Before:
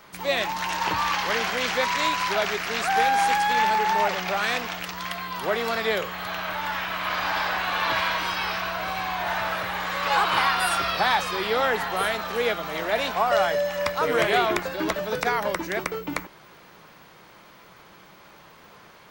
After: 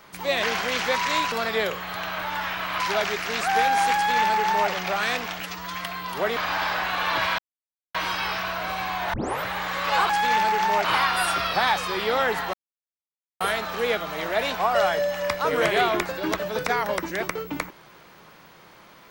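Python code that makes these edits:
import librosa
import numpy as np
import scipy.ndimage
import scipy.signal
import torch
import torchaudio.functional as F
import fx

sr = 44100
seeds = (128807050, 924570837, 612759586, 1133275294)

y = fx.edit(x, sr, fx.cut(start_s=0.43, length_s=0.89),
    fx.duplicate(start_s=3.36, length_s=0.75, to_s=10.28),
    fx.stretch_span(start_s=4.82, length_s=0.29, factor=1.5),
    fx.move(start_s=5.63, length_s=1.48, to_s=2.21),
    fx.insert_silence(at_s=8.13, length_s=0.56),
    fx.tape_start(start_s=9.32, length_s=0.3),
    fx.insert_silence(at_s=11.97, length_s=0.87), tone=tone)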